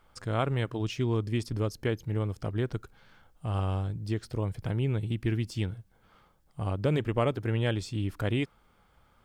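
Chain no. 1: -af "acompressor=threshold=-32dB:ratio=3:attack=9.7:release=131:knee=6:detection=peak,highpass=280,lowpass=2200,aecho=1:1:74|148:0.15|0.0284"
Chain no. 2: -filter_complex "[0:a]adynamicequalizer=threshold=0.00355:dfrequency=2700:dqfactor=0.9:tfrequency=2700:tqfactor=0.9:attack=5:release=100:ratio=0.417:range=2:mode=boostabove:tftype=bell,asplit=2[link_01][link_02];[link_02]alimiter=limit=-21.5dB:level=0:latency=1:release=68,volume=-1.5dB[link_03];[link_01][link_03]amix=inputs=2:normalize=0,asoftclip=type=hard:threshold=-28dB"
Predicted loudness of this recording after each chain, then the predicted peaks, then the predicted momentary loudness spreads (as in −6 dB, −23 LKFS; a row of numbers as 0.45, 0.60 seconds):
−41.5, −32.5 LKFS; −21.0, −28.0 dBFS; 8, 5 LU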